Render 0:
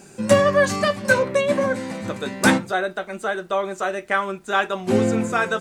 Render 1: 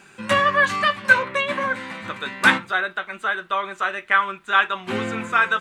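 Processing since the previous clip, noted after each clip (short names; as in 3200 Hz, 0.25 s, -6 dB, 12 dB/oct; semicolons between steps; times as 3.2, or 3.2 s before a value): band shelf 1900 Hz +13.5 dB 2.3 oct; gain -8.5 dB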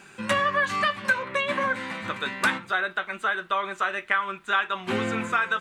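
compressor 4:1, threshold -21 dBFS, peak gain reduction 11.5 dB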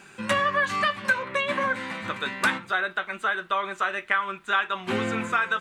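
nothing audible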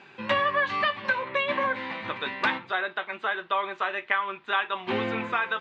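speaker cabinet 110–4200 Hz, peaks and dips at 190 Hz -8 dB, 890 Hz +4 dB, 1400 Hz -6 dB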